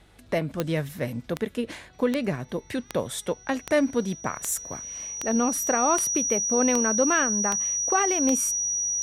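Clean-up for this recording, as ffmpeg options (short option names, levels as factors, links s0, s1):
-af "adeclick=t=4,bandreject=f=49:t=h:w=4,bandreject=f=98:t=h:w=4,bandreject=f=147:t=h:w=4,bandreject=f=196:t=h:w=4,bandreject=f=5800:w=30"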